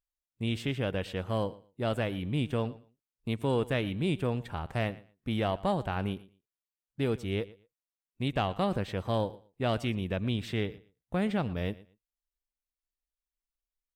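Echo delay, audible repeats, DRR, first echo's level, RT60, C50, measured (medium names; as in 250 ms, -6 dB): 116 ms, 2, no reverb, -20.0 dB, no reverb, no reverb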